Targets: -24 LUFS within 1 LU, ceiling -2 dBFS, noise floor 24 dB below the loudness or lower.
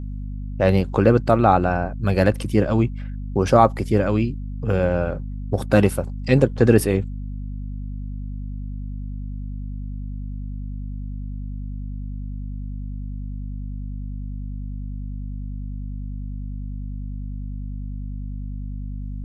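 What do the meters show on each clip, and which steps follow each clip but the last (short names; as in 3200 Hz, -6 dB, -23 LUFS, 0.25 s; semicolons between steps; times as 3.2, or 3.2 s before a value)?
hum 50 Hz; harmonics up to 250 Hz; hum level -27 dBFS; loudness -24.0 LUFS; peak -1.0 dBFS; loudness target -24.0 LUFS
-> notches 50/100/150/200/250 Hz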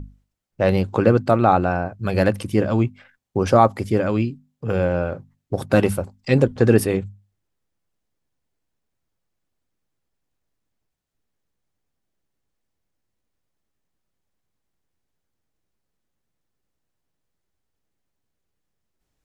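hum none; loudness -20.0 LUFS; peak -1.0 dBFS; loudness target -24.0 LUFS
-> gain -4 dB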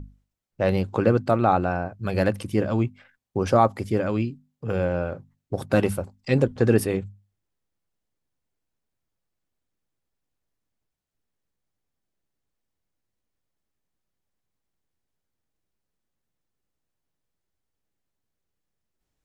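loudness -24.0 LUFS; peak -5.0 dBFS; noise floor -82 dBFS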